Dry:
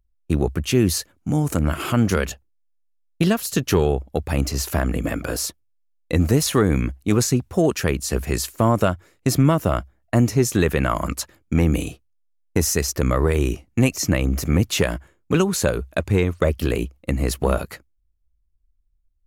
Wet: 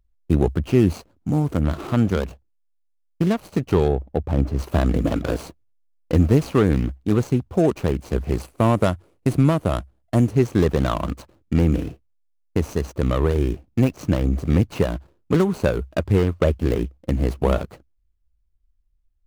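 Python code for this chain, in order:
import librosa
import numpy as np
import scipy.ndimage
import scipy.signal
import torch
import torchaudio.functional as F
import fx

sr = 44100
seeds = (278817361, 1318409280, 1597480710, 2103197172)

y = scipy.ndimage.median_filter(x, 25, mode='constant')
y = fx.high_shelf(y, sr, hz=2600.0, db=-10.0, at=(3.88, 4.59))
y = fx.rider(y, sr, range_db=10, speed_s=2.0)
y = fx.peak_eq(y, sr, hz=9700.0, db=7.5, octaves=0.54, at=(8.41, 10.33))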